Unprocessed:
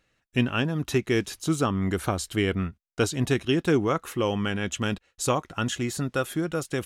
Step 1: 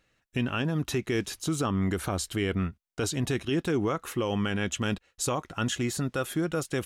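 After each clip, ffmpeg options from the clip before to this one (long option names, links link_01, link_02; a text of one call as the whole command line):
ffmpeg -i in.wav -af "alimiter=limit=-19dB:level=0:latency=1:release=49" out.wav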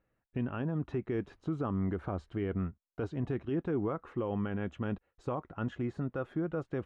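ffmpeg -i in.wav -af "lowpass=1200,volume=-5dB" out.wav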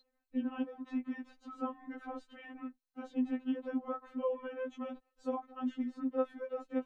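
ffmpeg -i in.wav -af "aeval=exprs='val(0)+0.00158*sin(2*PI*4100*n/s)':channel_layout=same,afftfilt=real='re*3.46*eq(mod(b,12),0)':imag='im*3.46*eq(mod(b,12),0)':win_size=2048:overlap=0.75" out.wav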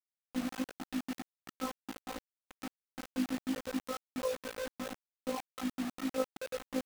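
ffmpeg -i in.wav -af "tremolo=f=55:d=0.571,acrusher=bits=6:mix=0:aa=0.000001,volume=1.5dB" out.wav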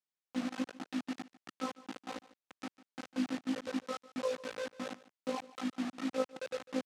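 ffmpeg -i in.wav -af "highpass=140,lowpass=6700,aecho=1:1:149:0.112" out.wav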